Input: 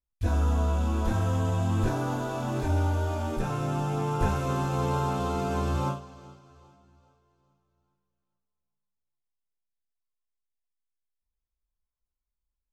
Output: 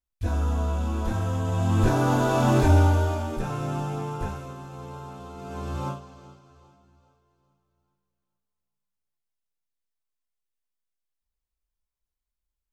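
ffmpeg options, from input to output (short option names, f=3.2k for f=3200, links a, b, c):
-af "volume=22.5dB,afade=t=in:st=1.45:d=1.05:silence=0.281838,afade=t=out:st=2.5:d=0.77:silence=0.298538,afade=t=out:st=3.77:d=0.78:silence=0.251189,afade=t=in:st=5.36:d=0.71:silence=0.251189"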